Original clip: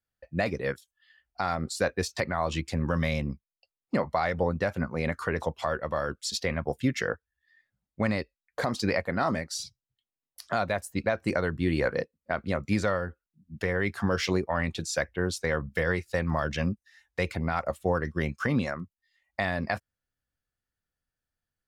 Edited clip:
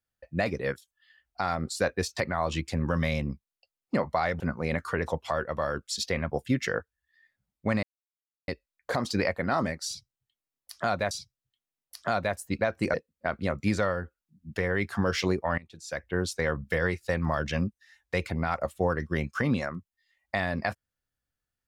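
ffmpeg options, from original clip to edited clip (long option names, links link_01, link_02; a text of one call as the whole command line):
ffmpeg -i in.wav -filter_complex "[0:a]asplit=6[link_01][link_02][link_03][link_04][link_05][link_06];[link_01]atrim=end=4.402[link_07];[link_02]atrim=start=4.738:end=8.17,asetpts=PTS-STARTPTS,afade=type=out:start_time=3.428:duration=0.004:curve=hsin,apad=pad_dur=0.65[link_08];[link_03]atrim=start=8.17:end=10.802,asetpts=PTS-STARTPTS,afade=type=in:duration=0.004:curve=hsin[link_09];[link_04]atrim=start=9.558:end=11.392[link_10];[link_05]atrim=start=11.988:end=14.63,asetpts=PTS-STARTPTS,afade=type=out:start_time=2.638:duration=0.004:curve=hsin:silence=0.0891251[link_11];[link_06]atrim=start=14.63,asetpts=PTS-STARTPTS,afade=type=in:duration=0.55:curve=qua:silence=0.0891251[link_12];[link_08][link_09]concat=n=2:v=0:a=1[link_13];[link_07][link_13]acrossfade=duration=0.004:curve1=hsin:curve2=hsin[link_14];[link_14][link_10]acrossfade=duration=0.004:curve1=hsin:curve2=hsin[link_15];[link_11][link_12]concat=n=2:v=0:a=1[link_16];[link_15][link_16]acrossfade=duration=0.004:curve1=hsin:curve2=hsin" out.wav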